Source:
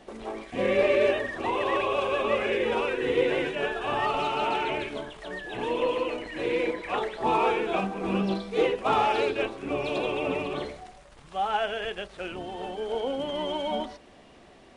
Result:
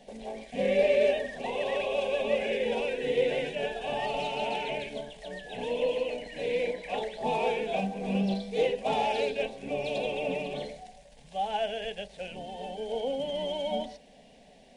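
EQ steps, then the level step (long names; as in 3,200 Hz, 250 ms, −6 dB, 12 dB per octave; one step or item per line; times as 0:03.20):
parametric band 1,000 Hz −6.5 dB 0.21 octaves
phaser with its sweep stopped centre 340 Hz, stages 6
0.0 dB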